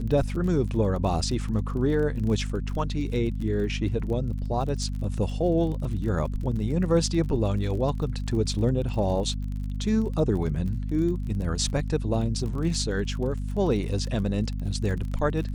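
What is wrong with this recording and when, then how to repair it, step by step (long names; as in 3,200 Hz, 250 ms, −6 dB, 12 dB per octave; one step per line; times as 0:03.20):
surface crackle 31 per second −33 dBFS
mains hum 50 Hz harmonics 5 −30 dBFS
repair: click removal
hum removal 50 Hz, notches 5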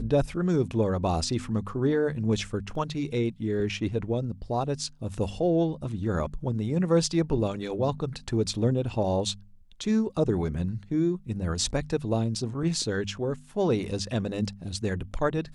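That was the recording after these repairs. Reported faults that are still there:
none of them is left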